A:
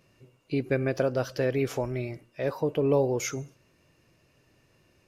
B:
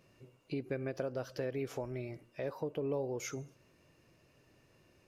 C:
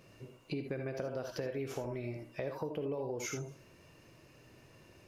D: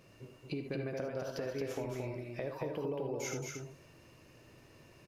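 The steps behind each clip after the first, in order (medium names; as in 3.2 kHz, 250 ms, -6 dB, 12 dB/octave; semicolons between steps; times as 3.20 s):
peaking EQ 480 Hz +2.5 dB 2.8 oct; compression 2:1, threshold -38 dBFS, peak gain reduction 12 dB; endings held to a fixed fall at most 490 dB/s; trim -3.5 dB
gated-style reverb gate 100 ms rising, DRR 4.5 dB; compression 3:1, threshold -43 dBFS, peak gain reduction 9.5 dB; trim +6 dB
delay 224 ms -4 dB; trim -1 dB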